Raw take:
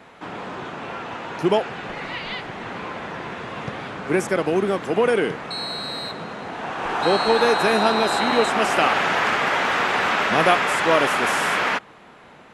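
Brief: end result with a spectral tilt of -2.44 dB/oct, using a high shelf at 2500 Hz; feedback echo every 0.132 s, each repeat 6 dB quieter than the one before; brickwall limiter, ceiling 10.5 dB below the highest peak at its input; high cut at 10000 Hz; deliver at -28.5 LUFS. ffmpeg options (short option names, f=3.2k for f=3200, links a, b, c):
-af "lowpass=10k,highshelf=f=2.5k:g=9,alimiter=limit=-10dB:level=0:latency=1,aecho=1:1:132|264|396|528|660|792:0.501|0.251|0.125|0.0626|0.0313|0.0157,volume=-9dB"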